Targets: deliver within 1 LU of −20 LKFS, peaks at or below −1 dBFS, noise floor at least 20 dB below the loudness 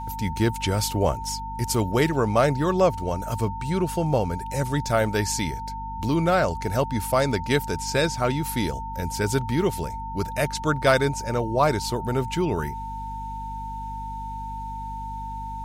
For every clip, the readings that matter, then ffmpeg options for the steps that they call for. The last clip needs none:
mains hum 50 Hz; hum harmonics up to 250 Hz; level of the hum −34 dBFS; interfering tone 900 Hz; level of the tone −32 dBFS; integrated loudness −25.0 LKFS; sample peak −6.5 dBFS; target loudness −20.0 LKFS
→ -af "bandreject=frequency=50:width_type=h:width=4,bandreject=frequency=100:width_type=h:width=4,bandreject=frequency=150:width_type=h:width=4,bandreject=frequency=200:width_type=h:width=4,bandreject=frequency=250:width_type=h:width=4"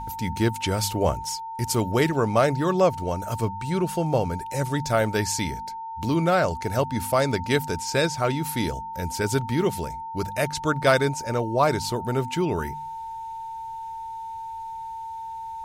mains hum none found; interfering tone 900 Hz; level of the tone −32 dBFS
→ -af "bandreject=frequency=900:width=30"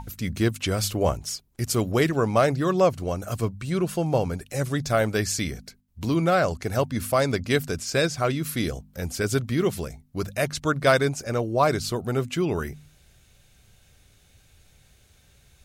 interfering tone none found; integrated loudness −25.0 LKFS; sample peak −7.0 dBFS; target loudness −20.0 LKFS
→ -af "volume=5dB"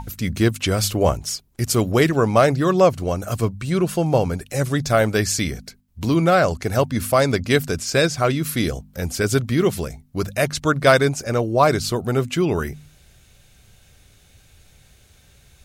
integrated loudness −20.0 LKFS; sample peak −2.0 dBFS; background noise floor −54 dBFS

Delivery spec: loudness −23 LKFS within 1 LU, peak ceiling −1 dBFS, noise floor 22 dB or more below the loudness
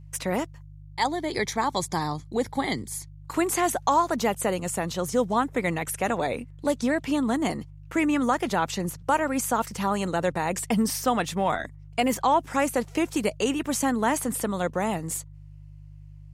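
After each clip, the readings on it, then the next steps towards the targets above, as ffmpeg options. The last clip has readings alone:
mains hum 50 Hz; hum harmonics up to 150 Hz; level of the hum −43 dBFS; integrated loudness −26.5 LKFS; sample peak −11.0 dBFS; target loudness −23.0 LKFS
→ -af "bandreject=frequency=50:width_type=h:width=4,bandreject=frequency=100:width_type=h:width=4,bandreject=frequency=150:width_type=h:width=4"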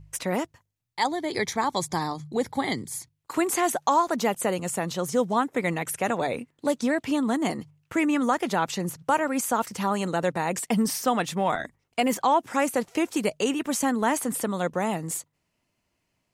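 mains hum none found; integrated loudness −26.5 LKFS; sample peak −11.0 dBFS; target loudness −23.0 LKFS
→ -af "volume=3.5dB"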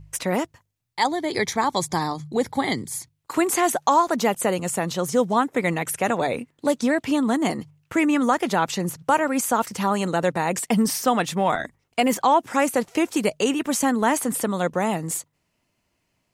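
integrated loudness −23.0 LKFS; sample peak −7.5 dBFS; background noise floor −73 dBFS

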